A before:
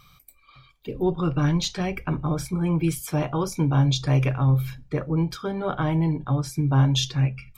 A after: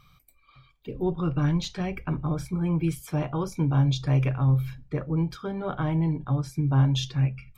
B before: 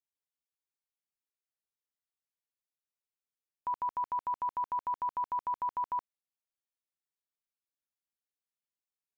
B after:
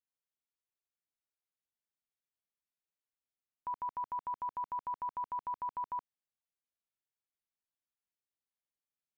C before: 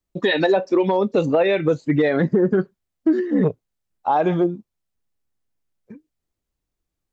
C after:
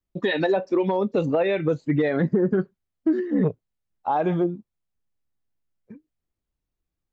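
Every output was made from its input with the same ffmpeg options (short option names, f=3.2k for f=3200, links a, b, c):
-af "bass=f=250:g=3,treble=f=4k:g=-5,volume=-4.5dB"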